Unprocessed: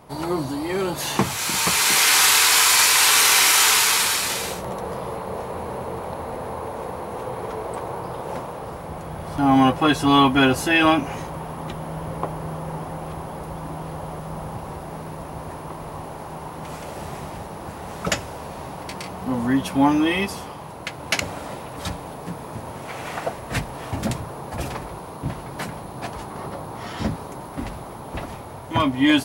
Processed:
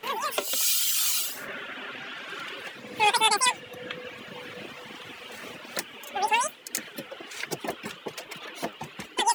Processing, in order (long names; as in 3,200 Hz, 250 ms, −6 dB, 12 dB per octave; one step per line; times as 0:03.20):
change of speed 3.13×
reverb reduction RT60 1.7 s
flanger 1.2 Hz, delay 1.8 ms, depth 8.8 ms, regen +75%